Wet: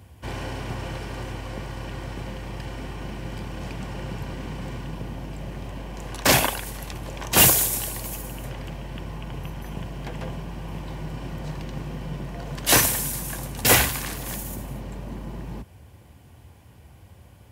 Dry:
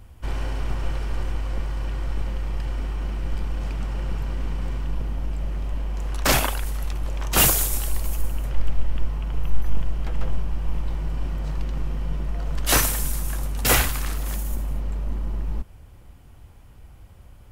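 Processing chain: high-pass 74 Hz 24 dB/octave; band-stop 1.3 kHz, Q 6.6; trim +2.5 dB

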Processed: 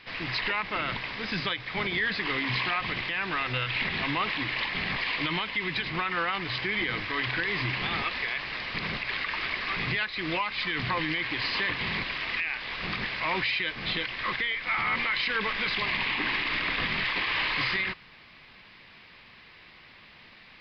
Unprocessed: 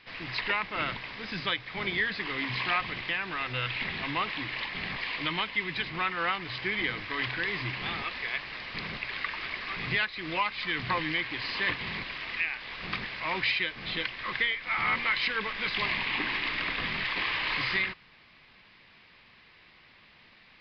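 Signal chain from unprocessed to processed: peak limiter -24 dBFS, peak gain reduction 8.5 dB; trim +5 dB

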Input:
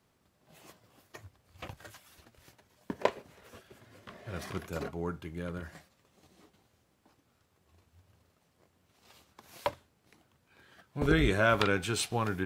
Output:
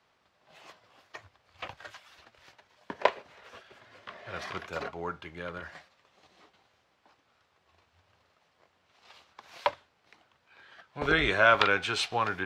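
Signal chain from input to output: three-band isolator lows -14 dB, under 540 Hz, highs -22 dB, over 5.4 kHz; trim +6.5 dB

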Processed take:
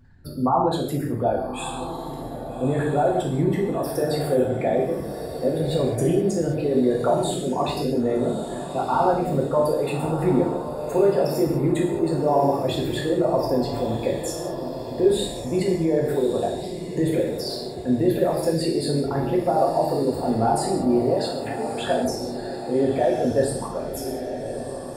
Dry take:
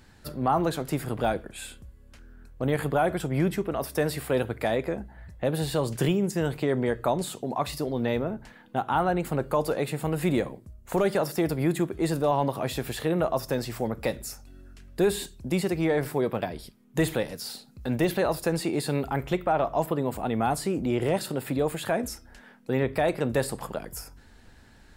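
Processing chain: resonances exaggerated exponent 2; 21.16–21.87 s: band-pass 620–7200 Hz; echo that smears into a reverb 1248 ms, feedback 49%, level -9 dB; gated-style reverb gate 240 ms falling, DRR -3 dB

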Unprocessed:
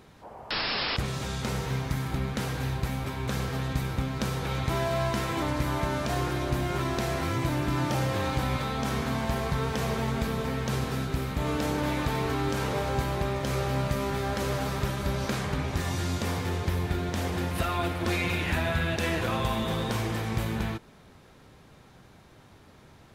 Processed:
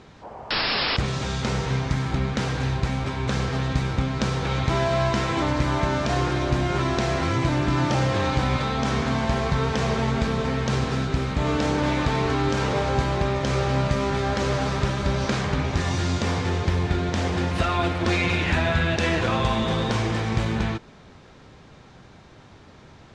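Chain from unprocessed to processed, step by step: low-pass 7.1 kHz 24 dB/octave; trim +5.5 dB

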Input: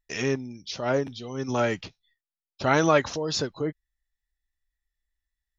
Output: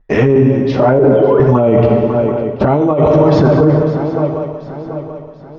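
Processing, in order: 0.99–1.40 s: formants replaced by sine waves; touch-sensitive flanger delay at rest 8.5 ms, full sweep at -20.5 dBFS; low-pass 1 kHz 12 dB/octave; shuffle delay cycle 735 ms, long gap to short 3:1, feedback 40%, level -18 dB; gated-style reverb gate 460 ms falling, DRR 3.5 dB; compressor with a negative ratio -31 dBFS, ratio -1; loudness maximiser +26.5 dB; trim -1 dB

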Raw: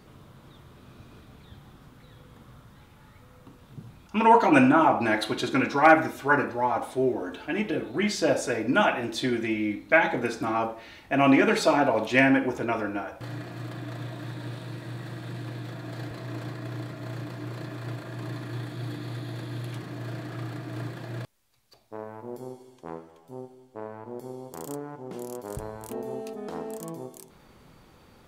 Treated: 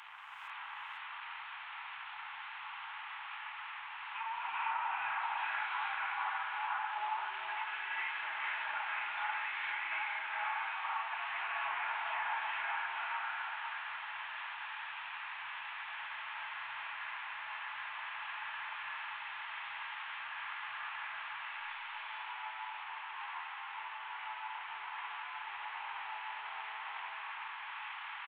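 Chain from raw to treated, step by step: one-bit delta coder 16 kbps, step -34.5 dBFS; elliptic high-pass 860 Hz, stop band 40 dB; compression, threshold -35 dBFS, peak gain reduction 8.5 dB; on a send: delay 497 ms -7 dB; on the sum: gated-style reverb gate 490 ms rising, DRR -4.5 dB; trim -4.5 dB

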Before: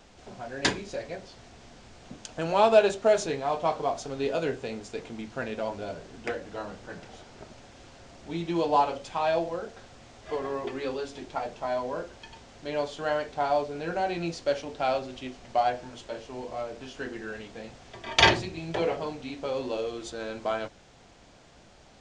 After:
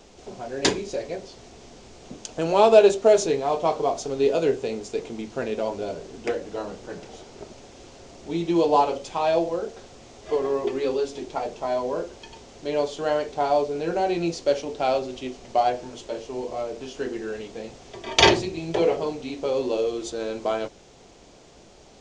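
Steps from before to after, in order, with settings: fifteen-band graphic EQ 100 Hz -3 dB, 400 Hz +7 dB, 1.6 kHz -5 dB, 6.3 kHz +4 dB; trim +3 dB

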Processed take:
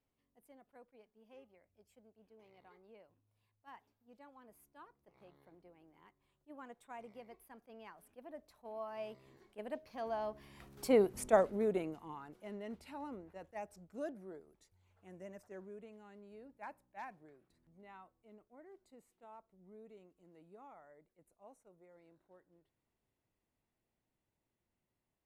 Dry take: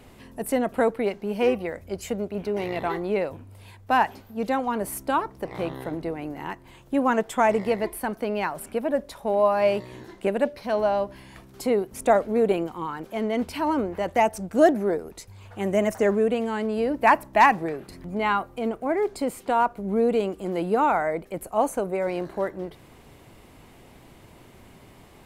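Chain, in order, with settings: Doppler pass-by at 11.04 s, 23 m/s, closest 5.9 m; attacks held to a fixed rise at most 510 dB/s; trim -4.5 dB

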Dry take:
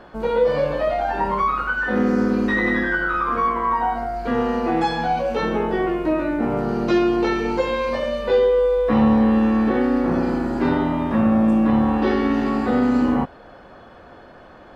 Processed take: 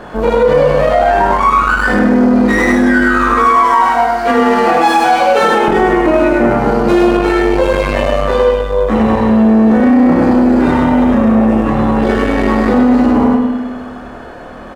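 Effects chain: median filter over 9 samples; 3.35–5.68 s: high-pass 790 Hz 6 dB/octave; gain riding within 4 dB 0.5 s; chorus voices 2, 0.25 Hz, delay 24 ms, depth 4.5 ms; feedback delay 100 ms, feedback 36%, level -4 dB; spring tank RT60 1.5 s, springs 52 ms, chirp 35 ms, DRR 8 dB; loudness maximiser +15.5 dB; transformer saturation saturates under 280 Hz

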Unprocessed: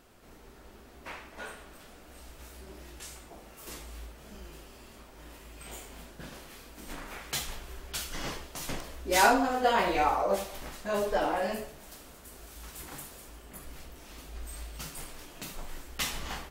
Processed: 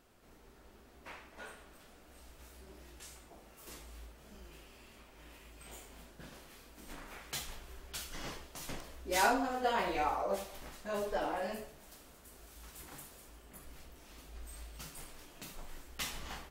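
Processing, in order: 4.51–5.50 s: peaking EQ 2.5 kHz +5.5 dB 0.88 oct; trim -7 dB

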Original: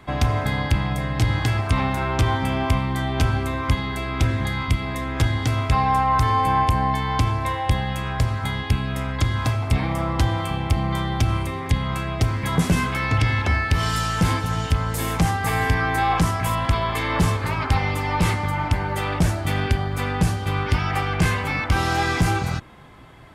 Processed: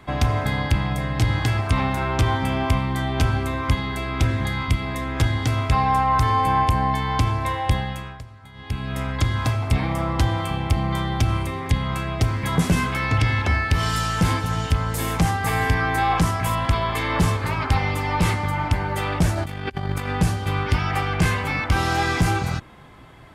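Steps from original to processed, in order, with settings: 7.75–9.01 s: dip -19.5 dB, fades 0.48 s; 19.35–20.09 s: compressor with a negative ratio -27 dBFS, ratio -0.5

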